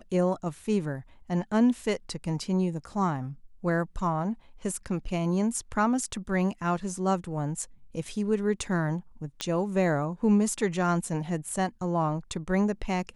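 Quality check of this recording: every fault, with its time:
9.41 pop -13 dBFS

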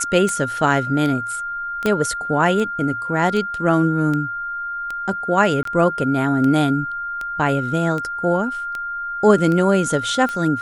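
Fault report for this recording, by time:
tick 78 rpm -14 dBFS
tone 1400 Hz -24 dBFS
1.86 pop -7 dBFS
5.63–5.65 gap 23 ms

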